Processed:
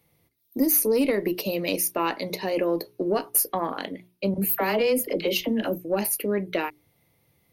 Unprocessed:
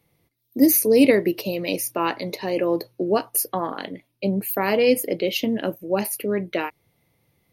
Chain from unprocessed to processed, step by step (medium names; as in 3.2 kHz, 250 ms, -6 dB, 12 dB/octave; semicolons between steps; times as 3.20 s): single-diode clipper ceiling -4.5 dBFS; 4.34–5.85 s: phase dispersion lows, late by 44 ms, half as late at 660 Hz; compression 5:1, threshold -19 dBFS, peak gain reduction 7.5 dB; treble shelf 10 kHz +5 dB; hum notches 60/120/180/240/300/360/420 Hz